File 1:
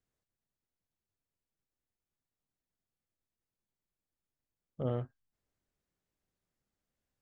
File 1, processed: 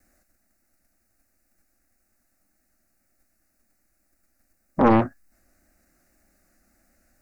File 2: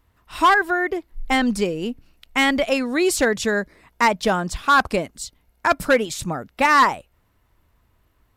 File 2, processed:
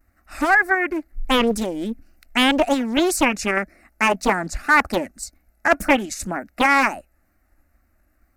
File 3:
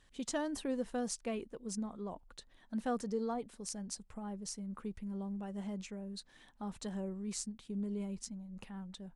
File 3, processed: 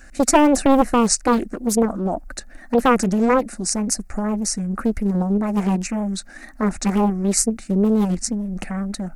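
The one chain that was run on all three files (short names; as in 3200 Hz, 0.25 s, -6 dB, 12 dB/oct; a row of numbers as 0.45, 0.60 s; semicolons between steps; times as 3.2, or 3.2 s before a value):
in parallel at 0 dB: level quantiser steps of 10 dB; on the sum: wow and flutter 130 cents; fixed phaser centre 660 Hz, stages 8; Doppler distortion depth 0.95 ms; match loudness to -20 LUFS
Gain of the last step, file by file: +21.0, -1.0, +20.5 dB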